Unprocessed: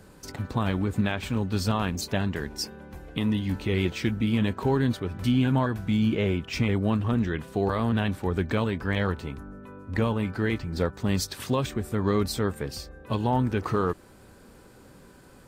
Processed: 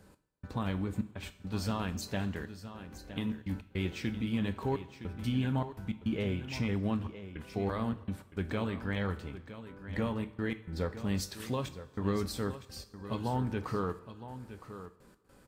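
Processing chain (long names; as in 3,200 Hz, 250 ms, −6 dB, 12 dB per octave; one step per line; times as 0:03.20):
gate pattern "x..xxxx.x.xxxxxx" 104 BPM −60 dB
single-tap delay 964 ms −12.5 dB
coupled-rooms reverb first 0.37 s, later 1.8 s, from −16 dB, DRR 9.5 dB
level −8.5 dB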